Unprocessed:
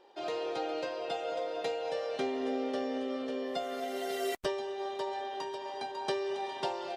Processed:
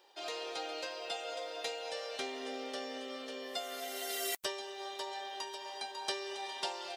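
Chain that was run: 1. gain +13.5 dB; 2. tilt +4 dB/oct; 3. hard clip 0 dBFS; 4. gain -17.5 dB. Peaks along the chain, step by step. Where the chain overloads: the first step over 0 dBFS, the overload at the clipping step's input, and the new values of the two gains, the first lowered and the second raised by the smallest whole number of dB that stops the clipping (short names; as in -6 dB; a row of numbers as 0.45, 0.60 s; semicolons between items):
-5.5, -4.0, -4.0, -21.5 dBFS; no overload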